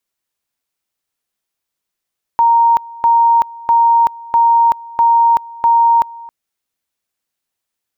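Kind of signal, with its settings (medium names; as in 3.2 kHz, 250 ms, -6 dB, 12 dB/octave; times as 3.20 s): two-level tone 930 Hz -7 dBFS, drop 22 dB, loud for 0.38 s, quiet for 0.27 s, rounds 6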